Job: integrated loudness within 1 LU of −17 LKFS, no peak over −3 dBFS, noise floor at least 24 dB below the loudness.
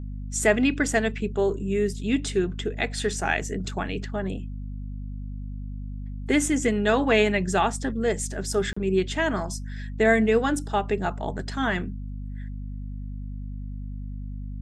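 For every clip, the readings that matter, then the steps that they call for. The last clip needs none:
number of dropouts 1; longest dropout 35 ms; mains hum 50 Hz; hum harmonics up to 250 Hz; level of the hum −31 dBFS; integrated loudness −25.0 LKFS; sample peak −6.5 dBFS; target loudness −17.0 LKFS
→ repair the gap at 0:08.73, 35 ms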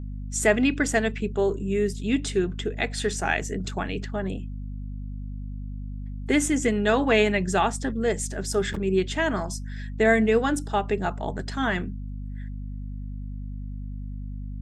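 number of dropouts 0; mains hum 50 Hz; hum harmonics up to 250 Hz; level of the hum −31 dBFS
→ mains-hum notches 50/100/150/200/250 Hz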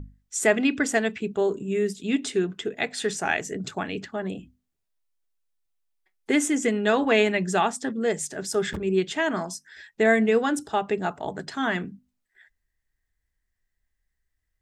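mains hum none found; integrated loudness −25.5 LKFS; sample peak −6.5 dBFS; target loudness −17.0 LKFS
→ level +8.5 dB
brickwall limiter −3 dBFS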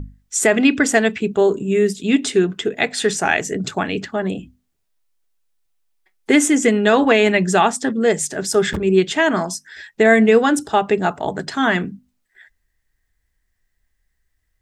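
integrated loudness −17.5 LKFS; sample peak −3.0 dBFS; background noise floor −71 dBFS

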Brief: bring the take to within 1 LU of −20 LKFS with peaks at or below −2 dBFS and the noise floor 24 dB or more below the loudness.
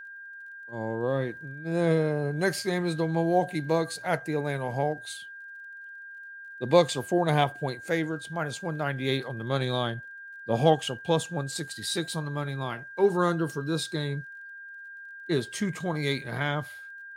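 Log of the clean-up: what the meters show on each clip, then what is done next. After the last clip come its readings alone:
crackle rate 27 per second; interfering tone 1,600 Hz; level of the tone −41 dBFS; integrated loudness −28.5 LKFS; sample peak −5.5 dBFS; target loudness −20.0 LKFS
→ click removal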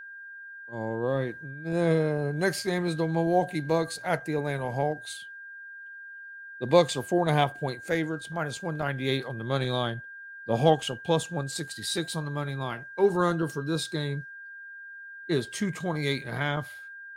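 crackle rate 0.12 per second; interfering tone 1,600 Hz; level of the tone −41 dBFS
→ notch filter 1,600 Hz, Q 30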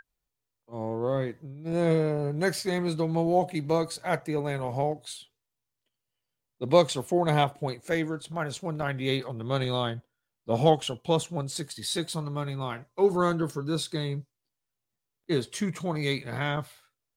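interfering tone none found; integrated loudness −28.5 LKFS; sample peak −5.5 dBFS; target loudness −20.0 LKFS
→ level +8.5 dB
brickwall limiter −2 dBFS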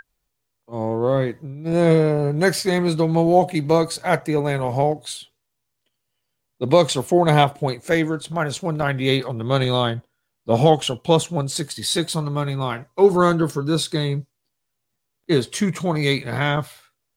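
integrated loudness −20.5 LKFS; sample peak −2.0 dBFS; background noise floor −77 dBFS

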